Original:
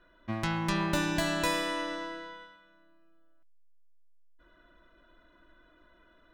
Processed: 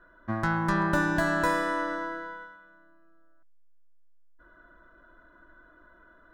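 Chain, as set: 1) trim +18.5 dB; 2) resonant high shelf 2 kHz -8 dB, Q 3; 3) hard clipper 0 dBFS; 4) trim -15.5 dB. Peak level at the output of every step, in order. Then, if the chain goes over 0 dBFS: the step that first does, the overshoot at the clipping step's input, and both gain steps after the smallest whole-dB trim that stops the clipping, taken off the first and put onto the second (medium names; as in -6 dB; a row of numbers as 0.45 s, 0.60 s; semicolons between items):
+4.5 dBFS, +3.0 dBFS, 0.0 dBFS, -15.5 dBFS; step 1, 3.0 dB; step 1 +15.5 dB, step 4 -12.5 dB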